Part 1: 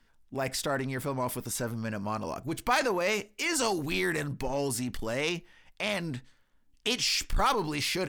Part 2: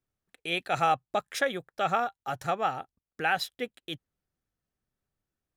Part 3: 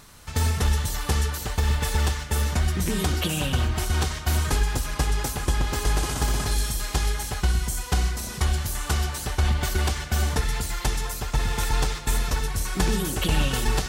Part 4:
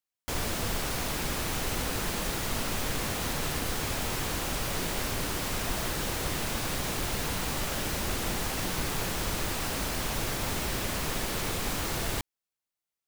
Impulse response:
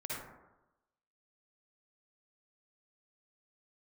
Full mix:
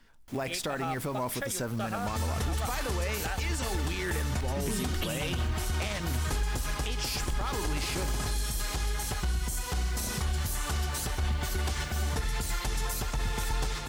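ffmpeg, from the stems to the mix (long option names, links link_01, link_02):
-filter_complex "[0:a]volume=0dB[link_01];[1:a]volume=-8dB[link_02];[2:a]adelay=1800,volume=-2.5dB[link_03];[3:a]asoftclip=type=tanh:threshold=-34dB,volume=-19.5dB[link_04];[link_03][link_04]amix=inputs=2:normalize=0,asoftclip=type=hard:threshold=-17dB,acompressor=threshold=-33dB:ratio=2,volume=0dB[link_05];[link_01][link_02]amix=inputs=2:normalize=0,acompressor=threshold=-33dB:ratio=6,volume=0dB[link_06];[link_05][link_06]amix=inputs=2:normalize=0,acontrast=37,alimiter=limit=-22dB:level=0:latency=1:release=114"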